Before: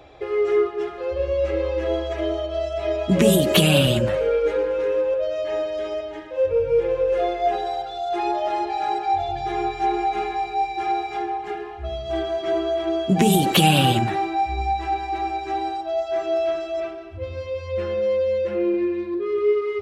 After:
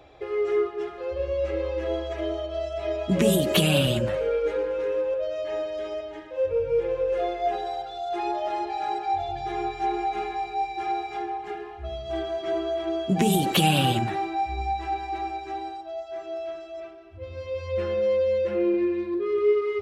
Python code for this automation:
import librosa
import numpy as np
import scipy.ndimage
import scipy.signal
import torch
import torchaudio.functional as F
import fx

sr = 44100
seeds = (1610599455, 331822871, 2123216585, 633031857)

y = fx.gain(x, sr, db=fx.line((15.16, -4.5), (16.07, -11.0), (17.01, -11.0), (17.61, -1.5)))